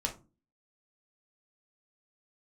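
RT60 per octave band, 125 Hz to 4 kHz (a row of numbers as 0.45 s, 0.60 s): 0.50 s, 0.50 s, 0.35 s, 0.30 s, 0.20 s, 0.20 s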